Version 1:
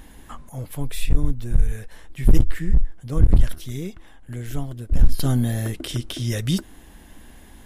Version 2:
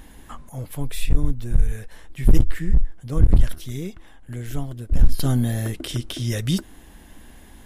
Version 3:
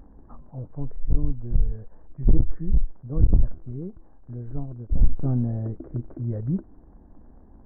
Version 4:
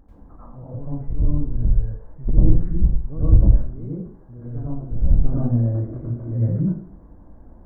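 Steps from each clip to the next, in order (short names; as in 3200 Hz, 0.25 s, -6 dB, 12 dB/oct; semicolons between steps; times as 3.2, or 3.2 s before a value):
nothing audible
crackle 49/s -27 dBFS; Gaussian blur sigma 9.2 samples; gain -3 dB
plate-style reverb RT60 0.56 s, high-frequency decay 0.85×, pre-delay 80 ms, DRR -9.5 dB; gain -5 dB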